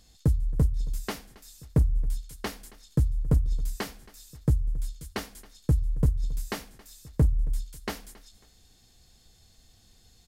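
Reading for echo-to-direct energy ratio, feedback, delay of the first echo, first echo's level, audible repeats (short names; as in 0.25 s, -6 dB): -21.0 dB, 34%, 0.273 s, -21.5 dB, 2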